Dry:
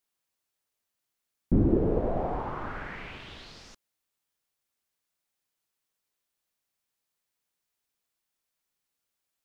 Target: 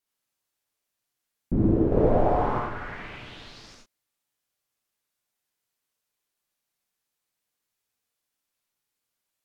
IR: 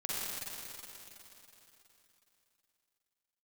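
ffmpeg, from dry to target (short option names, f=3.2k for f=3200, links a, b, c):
-filter_complex "[0:a]asettb=1/sr,asplit=3[a][b][c];[a]atrim=end=1.924[d];[b]atrim=start=1.92:end=2.59,asetpts=PTS-STARTPTS,afade=t=in:d=0.004:c=qsin,afade=t=out:st=0.666:d=0.004:c=qsin,acontrast=59[e];[c]atrim=start=2.586[f];[d][e]acrossfade=d=0.004:c1=hsin:c2=qsin[g];[g][f]acrossfade=d=0.004:c1=qsin:c2=hsin[h];[1:a]atrim=start_sample=2205,atrim=end_sample=3969,asetrate=34398,aresample=44100[i];[h][i]afir=irnorm=-1:irlink=0"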